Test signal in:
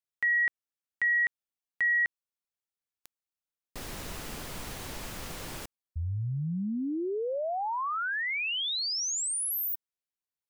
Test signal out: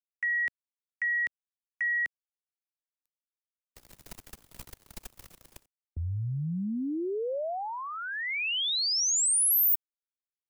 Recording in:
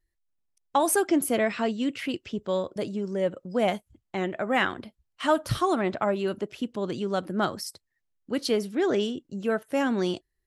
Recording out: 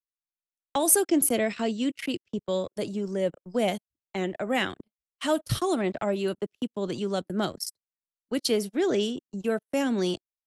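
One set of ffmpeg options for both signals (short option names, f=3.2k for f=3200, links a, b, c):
-filter_complex "[0:a]agate=range=-37dB:threshold=-40dB:ratio=16:release=22:detection=peak,highshelf=f=5.9k:g=9,acrossover=split=200|800|1800[a][b][c][d];[c]acompressor=threshold=-45dB:ratio=6:attack=13:release=183[e];[a][b][e][d]amix=inputs=4:normalize=0"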